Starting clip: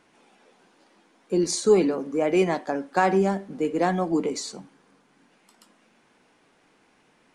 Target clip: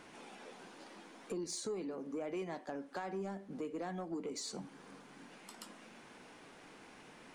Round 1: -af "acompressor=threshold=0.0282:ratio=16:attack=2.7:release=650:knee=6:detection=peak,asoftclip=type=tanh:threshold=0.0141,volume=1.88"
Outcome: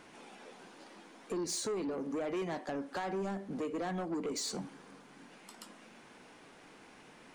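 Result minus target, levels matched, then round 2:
compression: peak gain reduction -7.5 dB
-af "acompressor=threshold=0.0112:ratio=16:attack=2.7:release=650:knee=6:detection=peak,asoftclip=type=tanh:threshold=0.0141,volume=1.88"

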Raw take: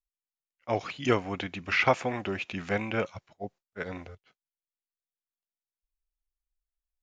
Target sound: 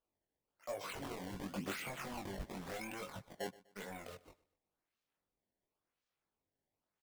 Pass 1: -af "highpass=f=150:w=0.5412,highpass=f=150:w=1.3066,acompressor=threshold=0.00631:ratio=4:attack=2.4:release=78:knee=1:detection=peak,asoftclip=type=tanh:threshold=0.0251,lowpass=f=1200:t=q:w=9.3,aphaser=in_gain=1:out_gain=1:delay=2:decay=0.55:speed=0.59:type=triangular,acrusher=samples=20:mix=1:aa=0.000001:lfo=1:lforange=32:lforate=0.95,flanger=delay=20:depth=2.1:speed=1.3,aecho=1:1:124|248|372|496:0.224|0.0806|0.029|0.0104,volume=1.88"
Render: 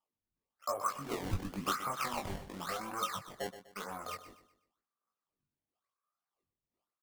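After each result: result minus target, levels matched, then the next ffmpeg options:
echo-to-direct +8 dB; saturation: distortion -8 dB; 1 kHz band +4.5 dB
-af "highpass=f=150:w=0.5412,highpass=f=150:w=1.3066,acompressor=threshold=0.00631:ratio=4:attack=2.4:release=78:knee=1:detection=peak,asoftclip=type=tanh:threshold=0.0251,lowpass=f=1200:t=q:w=9.3,aphaser=in_gain=1:out_gain=1:delay=2:decay=0.55:speed=0.59:type=triangular,acrusher=samples=20:mix=1:aa=0.000001:lfo=1:lforange=32:lforate=0.95,flanger=delay=20:depth=2.1:speed=1.3,aecho=1:1:124|248|372:0.0891|0.0321|0.0116,volume=1.88"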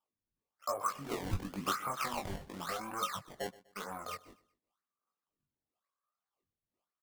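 saturation: distortion -8 dB; 1 kHz band +4.5 dB
-af "highpass=f=150:w=0.5412,highpass=f=150:w=1.3066,acompressor=threshold=0.00631:ratio=4:attack=2.4:release=78:knee=1:detection=peak,asoftclip=type=tanh:threshold=0.0119,lowpass=f=1200:t=q:w=9.3,aphaser=in_gain=1:out_gain=1:delay=2:decay=0.55:speed=0.59:type=triangular,acrusher=samples=20:mix=1:aa=0.000001:lfo=1:lforange=32:lforate=0.95,flanger=delay=20:depth=2.1:speed=1.3,aecho=1:1:124|248|372:0.0891|0.0321|0.0116,volume=1.88"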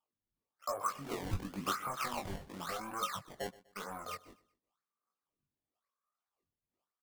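1 kHz band +4.5 dB
-af "highpass=f=150:w=0.5412,highpass=f=150:w=1.3066,acompressor=threshold=0.00631:ratio=4:attack=2.4:release=78:knee=1:detection=peak,asoftclip=type=tanh:threshold=0.0119,aphaser=in_gain=1:out_gain=1:delay=2:decay=0.55:speed=0.59:type=triangular,acrusher=samples=20:mix=1:aa=0.000001:lfo=1:lforange=32:lforate=0.95,flanger=delay=20:depth=2.1:speed=1.3,aecho=1:1:124|248|372:0.0891|0.0321|0.0116,volume=1.88"

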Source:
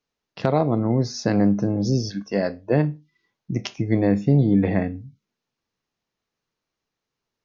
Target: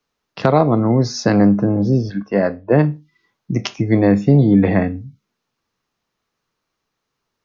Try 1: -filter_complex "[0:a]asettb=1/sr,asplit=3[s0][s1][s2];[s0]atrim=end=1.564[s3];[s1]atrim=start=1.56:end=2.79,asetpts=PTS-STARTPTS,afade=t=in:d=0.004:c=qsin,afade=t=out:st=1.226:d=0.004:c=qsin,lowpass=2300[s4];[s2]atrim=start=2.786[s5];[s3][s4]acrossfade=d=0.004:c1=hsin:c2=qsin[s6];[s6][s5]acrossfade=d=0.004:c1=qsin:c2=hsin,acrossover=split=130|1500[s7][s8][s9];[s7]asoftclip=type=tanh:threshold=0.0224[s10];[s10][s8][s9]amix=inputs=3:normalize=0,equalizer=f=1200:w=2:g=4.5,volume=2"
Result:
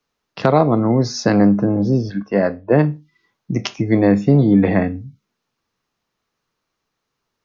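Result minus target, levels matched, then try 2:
saturation: distortion +9 dB
-filter_complex "[0:a]asettb=1/sr,asplit=3[s0][s1][s2];[s0]atrim=end=1.564[s3];[s1]atrim=start=1.56:end=2.79,asetpts=PTS-STARTPTS,afade=t=in:d=0.004:c=qsin,afade=t=out:st=1.226:d=0.004:c=qsin,lowpass=2300[s4];[s2]atrim=start=2.786[s5];[s3][s4]acrossfade=d=0.004:c1=hsin:c2=qsin[s6];[s6][s5]acrossfade=d=0.004:c1=qsin:c2=hsin,acrossover=split=130|1500[s7][s8][s9];[s7]asoftclip=type=tanh:threshold=0.0631[s10];[s10][s8][s9]amix=inputs=3:normalize=0,equalizer=f=1200:w=2:g=4.5,volume=2"

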